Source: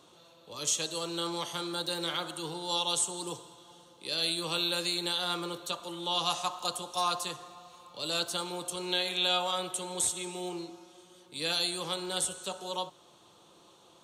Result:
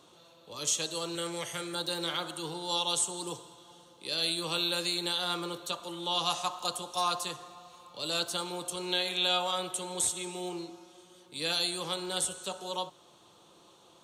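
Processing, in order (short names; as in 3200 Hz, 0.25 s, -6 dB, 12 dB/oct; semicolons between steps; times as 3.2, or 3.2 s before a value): 1.15–1.75 graphic EQ 125/250/500/1000/2000/4000/8000 Hz +6/-9/+5/-10/+11/-10/+7 dB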